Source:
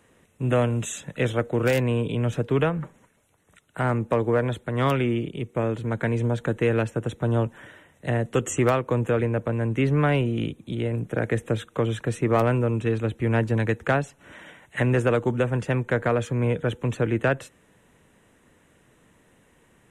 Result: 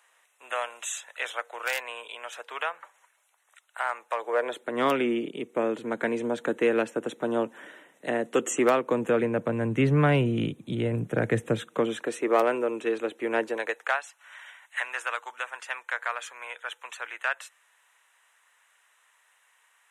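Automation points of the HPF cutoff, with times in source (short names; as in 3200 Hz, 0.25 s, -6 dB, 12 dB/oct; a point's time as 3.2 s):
HPF 24 dB/oct
4.1 s 780 Hz
4.77 s 240 Hz
8.66 s 240 Hz
9.94 s 110 Hz
11.42 s 110 Hz
12.17 s 320 Hz
13.44 s 320 Hz
14.02 s 930 Hz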